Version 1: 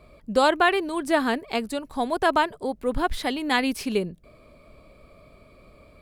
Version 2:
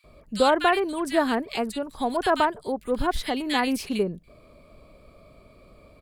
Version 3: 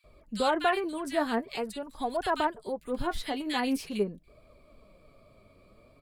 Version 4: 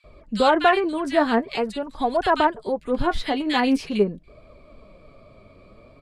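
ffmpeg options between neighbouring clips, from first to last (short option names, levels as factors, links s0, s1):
-filter_complex "[0:a]acrossover=split=1900[s0][s1];[s0]adelay=40[s2];[s2][s1]amix=inputs=2:normalize=0"
-af "flanger=delay=1.1:depth=9.9:regen=42:speed=0.45:shape=triangular,volume=0.794"
-af "adynamicsmooth=sensitivity=1:basefreq=6100,volume=2.82"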